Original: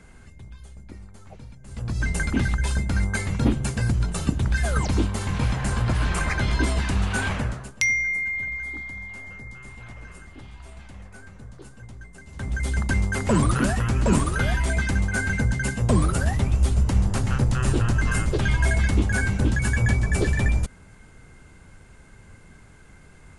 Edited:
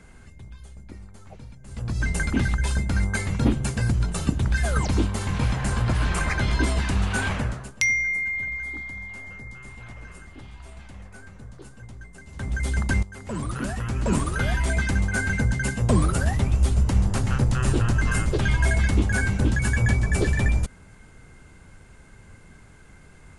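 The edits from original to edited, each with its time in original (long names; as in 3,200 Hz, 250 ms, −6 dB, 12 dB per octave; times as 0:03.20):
0:13.03–0:14.69: fade in, from −18.5 dB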